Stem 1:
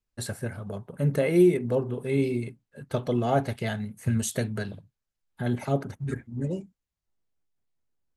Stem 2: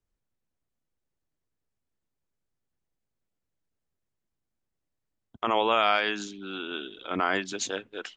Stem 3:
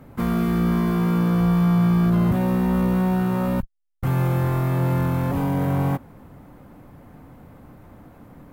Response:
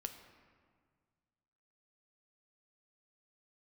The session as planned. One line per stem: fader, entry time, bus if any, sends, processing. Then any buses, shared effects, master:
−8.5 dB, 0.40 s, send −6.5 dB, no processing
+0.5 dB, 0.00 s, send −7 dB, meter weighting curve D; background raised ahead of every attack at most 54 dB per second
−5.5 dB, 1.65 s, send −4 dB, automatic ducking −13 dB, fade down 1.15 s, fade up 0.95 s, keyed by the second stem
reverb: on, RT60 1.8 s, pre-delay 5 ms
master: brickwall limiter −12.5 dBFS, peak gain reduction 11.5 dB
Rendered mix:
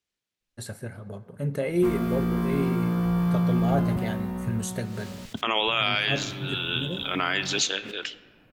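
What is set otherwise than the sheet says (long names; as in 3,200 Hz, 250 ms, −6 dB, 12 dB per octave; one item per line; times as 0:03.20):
stem 2 +0.5 dB → −6.5 dB
stem 3: send off
reverb return +7.0 dB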